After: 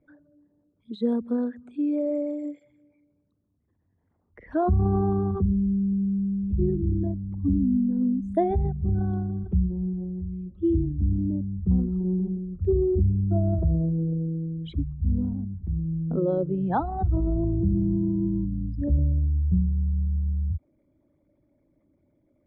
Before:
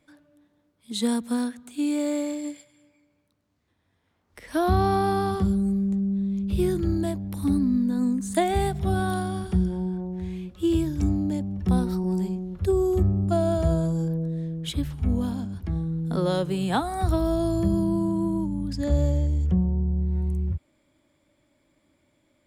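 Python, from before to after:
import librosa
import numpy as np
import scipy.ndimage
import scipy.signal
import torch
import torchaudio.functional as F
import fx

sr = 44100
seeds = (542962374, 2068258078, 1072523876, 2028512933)

y = fx.envelope_sharpen(x, sr, power=2.0)
y = scipy.signal.sosfilt(scipy.signal.butter(2, 1500.0, 'lowpass', fs=sr, output='sos'), y)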